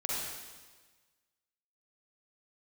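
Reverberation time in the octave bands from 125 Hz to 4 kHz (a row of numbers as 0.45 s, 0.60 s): 1.5 s, 1.4 s, 1.4 s, 1.4 s, 1.4 s, 1.4 s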